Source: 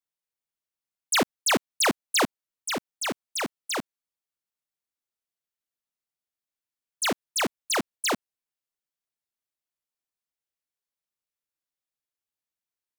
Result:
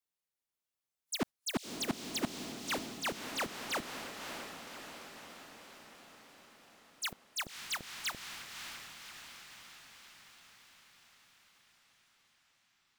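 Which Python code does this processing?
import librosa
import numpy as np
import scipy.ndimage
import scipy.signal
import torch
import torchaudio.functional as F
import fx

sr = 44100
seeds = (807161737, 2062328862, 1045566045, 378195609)

p1 = fx.auto_swell(x, sr, attack_ms=231.0)
p2 = fx.fold_sine(p1, sr, drive_db=14, ceiling_db=-26.5)
p3 = p1 + (p2 * 10.0 ** (-4.0 / 20.0))
p4 = fx.echo_diffused(p3, sr, ms=585, feedback_pct=62, wet_db=-6)
p5 = fx.noise_reduce_blind(p4, sr, reduce_db=12)
y = p5 * 10.0 ** (-4.5 / 20.0)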